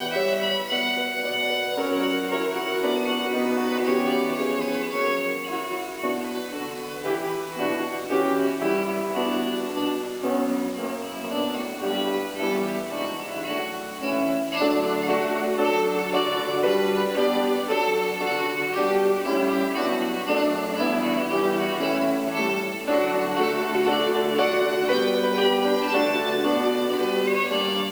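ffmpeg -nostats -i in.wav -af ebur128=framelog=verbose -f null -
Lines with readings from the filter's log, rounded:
Integrated loudness:
  I:         -24.1 LUFS
  Threshold: -34.0 LUFS
Loudness range:
  LRA:         4.8 LU
  Threshold: -44.2 LUFS
  LRA low:   -26.9 LUFS
  LRA high:  -22.0 LUFS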